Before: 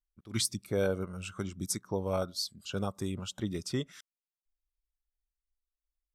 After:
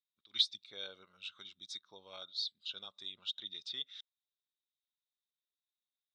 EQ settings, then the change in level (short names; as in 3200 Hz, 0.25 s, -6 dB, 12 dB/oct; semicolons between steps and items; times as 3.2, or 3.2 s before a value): band-pass 3700 Hz, Q 13; air absorption 130 m; +16.5 dB